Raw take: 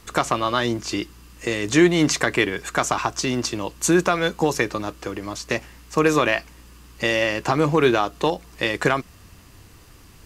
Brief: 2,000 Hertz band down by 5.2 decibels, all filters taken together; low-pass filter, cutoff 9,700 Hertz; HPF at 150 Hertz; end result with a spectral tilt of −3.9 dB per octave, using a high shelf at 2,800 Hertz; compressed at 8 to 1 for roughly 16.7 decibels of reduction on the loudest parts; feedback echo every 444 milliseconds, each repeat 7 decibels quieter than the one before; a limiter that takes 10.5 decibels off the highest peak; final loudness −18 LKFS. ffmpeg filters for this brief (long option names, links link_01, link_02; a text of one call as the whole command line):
ffmpeg -i in.wav -af "highpass=150,lowpass=9700,equalizer=frequency=2000:width_type=o:gain=-5,highshelf=frequency=2800:gain=-4,acompressor=threshold=-30dB:ratio=8,alimiter=level_in=0.5dB:limit=-24dB:level=0:latency=1,volume=-0.5dB,aecho=1:1:444|888|1332|1776|2220:0.447|0.201|0.0905|0.0407|0.0183,volume=18dB" out.wav